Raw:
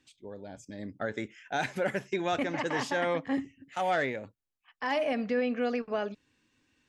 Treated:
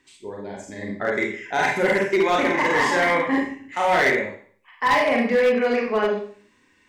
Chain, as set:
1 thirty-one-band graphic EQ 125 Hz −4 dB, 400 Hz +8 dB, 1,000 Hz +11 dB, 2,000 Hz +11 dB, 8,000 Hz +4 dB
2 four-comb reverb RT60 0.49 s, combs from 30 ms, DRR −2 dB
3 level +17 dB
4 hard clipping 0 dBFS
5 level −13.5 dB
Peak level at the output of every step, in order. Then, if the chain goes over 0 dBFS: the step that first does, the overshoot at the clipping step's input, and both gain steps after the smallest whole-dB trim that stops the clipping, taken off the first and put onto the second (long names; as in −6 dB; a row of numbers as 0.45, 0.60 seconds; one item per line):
−12.0, −7.5, +9.5, 0.0, −13.5 dBFS
step 3, 9.5 dB
step 3 +7 dB, step 5 −3.5 dB